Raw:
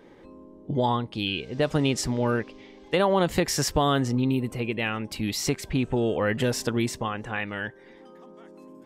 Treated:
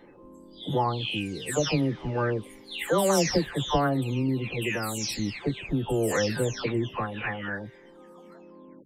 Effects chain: spectral delay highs early, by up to 0.5 s

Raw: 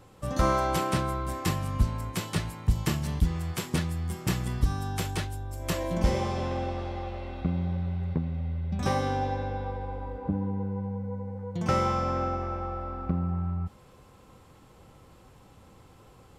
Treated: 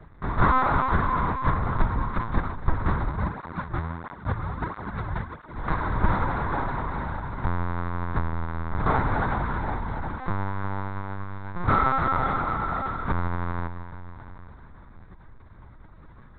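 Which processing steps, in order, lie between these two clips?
half-waves squared off; de-hum 338.5 Hz, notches 6; dynamic EQ 990 Hz, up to +7 dB, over -41 dBFS, Q 0.96; requantised 8-bit, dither none; fixed phaser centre 1200 Hz, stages 4; echo with dull and thin repeats by turns 0.165 s, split 830 Hz, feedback 76%, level -10 dB; LPC vocoder at 8 kHz pitch kept; 3.09–5.56 tape flanging out of phase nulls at 1.5 Hz, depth 4.7 ms

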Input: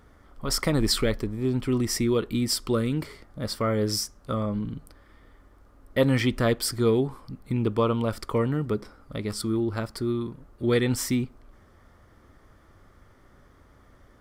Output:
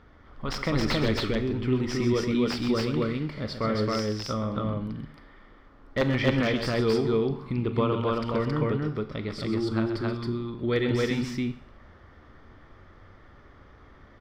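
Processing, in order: high shelf 2000 Hz +9 dB; in parallel at -1 dB: compressor 6:1, threshold -32 dBFS, peak gain reduction 18 dB; on the sum: wrapped overs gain 8 dB; air absorption 260 m; resonator 75 Hz, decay 0.78 s, mix 50%; on a send: loudspeakers at several distances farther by 44 m -9 dB, 93 m -1 dB; on the sum: Schroeder reverb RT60 0.42 s, combs from 29 ms, DRR 13 dB

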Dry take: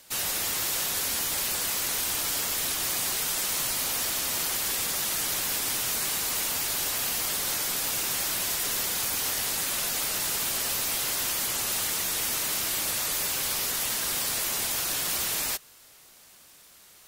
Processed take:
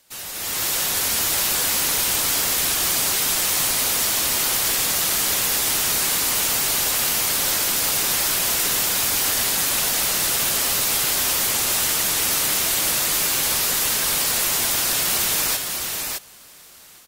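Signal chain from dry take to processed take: AGC gain up to 12 dB; on a send: echo 0.612 s -4.5 dB; on the sum: gain -5.5 dB

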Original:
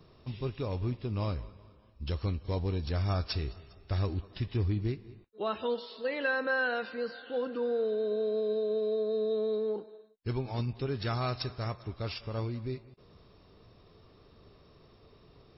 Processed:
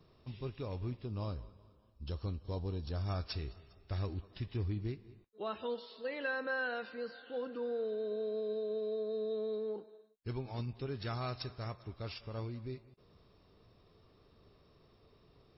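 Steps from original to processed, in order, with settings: 1.05–3.07 bell 2100 Hz -10 dB 0.58 oct; gain -6.5 dB

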